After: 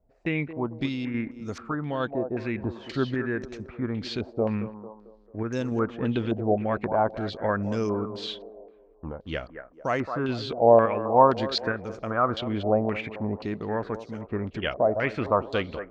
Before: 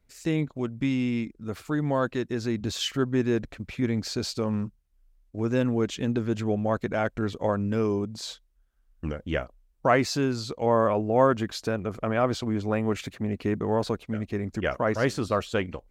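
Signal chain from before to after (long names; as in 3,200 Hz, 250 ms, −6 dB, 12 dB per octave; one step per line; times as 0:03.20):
sample-and-hold tremolo
feedback echo with a band-pass in the loop 222 ms, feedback 55%, band-pass 560 Hz, level −9.5 dB
low-pass on a step sequencer 3.8 Hz 690–5,900 Hz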